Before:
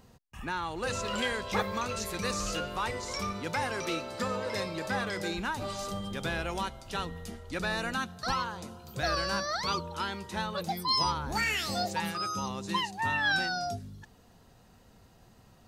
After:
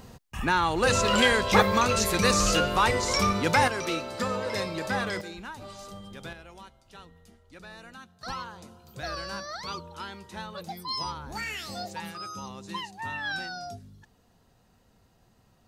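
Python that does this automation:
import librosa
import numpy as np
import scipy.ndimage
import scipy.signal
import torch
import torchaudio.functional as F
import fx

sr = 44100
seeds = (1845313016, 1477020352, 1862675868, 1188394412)

y = fx.gain(x, sr, db=fx.steps((0.0, 10.0), (3.68, 3.0), (5.21, -7.0), (6.33, -14.0), (8.21, -5.0)))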